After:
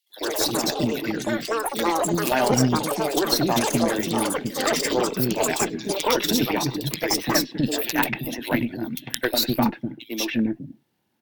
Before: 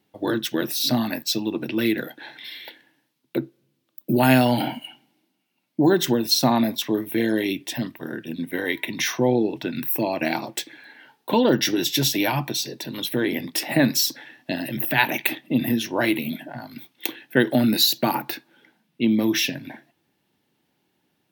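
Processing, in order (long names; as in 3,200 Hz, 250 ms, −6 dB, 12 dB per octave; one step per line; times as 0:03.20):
wrap-around overflow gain 4.5 dB
tempo change 1.9×
delay with pitch and tempo change per echo 88 ms, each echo +5 semitones, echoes 3
three-band delay without the direct sound highs, mids, lows 100/350 ms, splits 340/2,800 Hz
harmonic generator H 6 −22 dB, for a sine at 0 dBFS
AAC 128 kbit/s 48,000 Hz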